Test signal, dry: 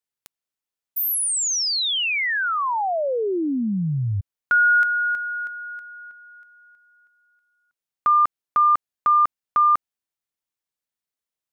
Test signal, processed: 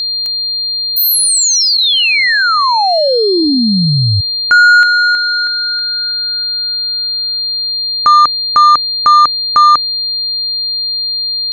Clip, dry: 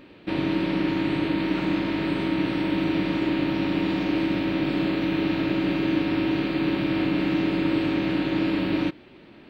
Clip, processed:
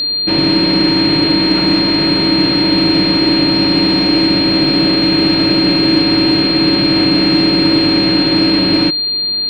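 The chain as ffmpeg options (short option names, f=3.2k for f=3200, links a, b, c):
-af "aeval=exprs='val(0)+0.0562*sin(2*PI*4200*n/s)':c=same,acontrast=86,volume=4dB"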